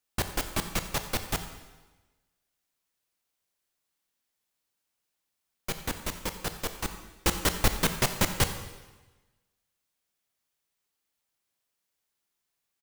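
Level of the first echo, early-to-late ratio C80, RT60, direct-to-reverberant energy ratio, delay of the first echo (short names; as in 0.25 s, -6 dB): -17.5 dB, 10.5 dB, 1.2 s, 7.5 dB, 89 ms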